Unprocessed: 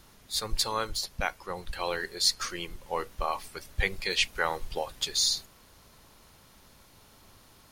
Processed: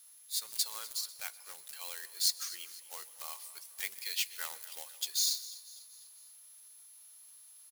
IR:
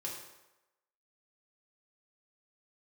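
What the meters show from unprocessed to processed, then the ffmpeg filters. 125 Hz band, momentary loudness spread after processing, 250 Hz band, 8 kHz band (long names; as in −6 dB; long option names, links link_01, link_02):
below −35 dB, 23 LU, below −25 dB, −1.5 dB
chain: -filter_complex "[0:a]acrusher=bits=2:mode=log:mix=0:aa=0.000001,aderivative,aeval=exprs='val(0)+0.002*sin(2*PI*11000*n/s)':channel_layout=same,aecho=1:1:247|494|741|988:0.133|0.0667|0.0333|0.0167,asplit=2[link_01][link_02];[1:a]atrim=start_sample=2205,adelay=126[link_03];[link_02][link_03]afir=irnorm=-1:irlink=0,volume=-19.5dB[link_04];[link_01][link_04]amix=inputs=2:normalize=0,volume=-2.5dB"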